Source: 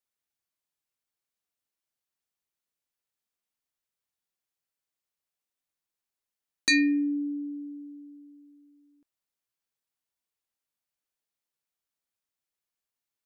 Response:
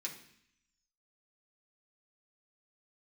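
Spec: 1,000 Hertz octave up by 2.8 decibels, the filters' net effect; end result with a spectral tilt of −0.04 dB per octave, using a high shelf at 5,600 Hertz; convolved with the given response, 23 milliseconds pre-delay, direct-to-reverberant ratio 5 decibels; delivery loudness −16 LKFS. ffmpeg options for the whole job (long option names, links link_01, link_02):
-filter_complex "[0:a]equalizer=frequency=1000:width_type=o:gain=3.5,highshelf=frequency=5600:gain=4.5,asplit=2[link_01][link_02];[1:a]atrim=start_sample=2205,adelay=23[link_03];[link_02][link_03]afir=irnorm=-1:irlink=0,volume=-4dB[link_04];[link_01][link_04]amix=inputs=2:normalize=0,volume=10.5dB"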